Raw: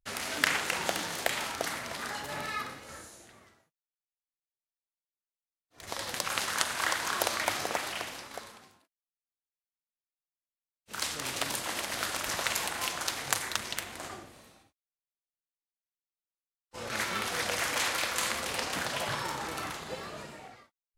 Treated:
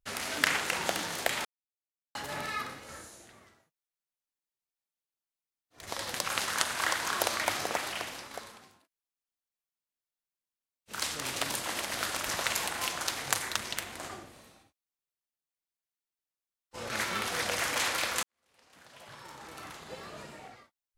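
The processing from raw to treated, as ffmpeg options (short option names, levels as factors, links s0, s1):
-filter_complex "[0:a]asplit=4[s0][s1][s2][s3];[s0]atrim=end=1.45,asetpts=PTS-STARTPTS,afade=t=out:st=1.446:d=0.004:c=hsin[s4];[s1]atrim=start=1.45:end=2.15,asetpts=PTS-STARTPTS,volume=0[s5];[s2]atrim=start=2.15:end=18.23,asetpts=PTS-STARTPTS,afade=t=in:d=0.004:c=hsin,afade=t=out:st=16.076:d=0.004:c=hsin[s6];[s3]atrim=start=18.23,asetpts=PTS-STARTPTS,afade=t=in:d=2.25:c=qua[s7];[s4][s5][s6][s7]concat=n=4:v=0:a=1"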